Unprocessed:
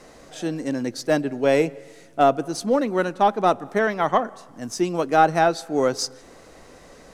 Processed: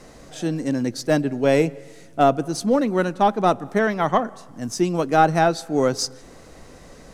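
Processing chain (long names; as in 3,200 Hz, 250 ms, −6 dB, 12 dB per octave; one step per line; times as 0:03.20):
bass and treble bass +7 dB, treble +2 dB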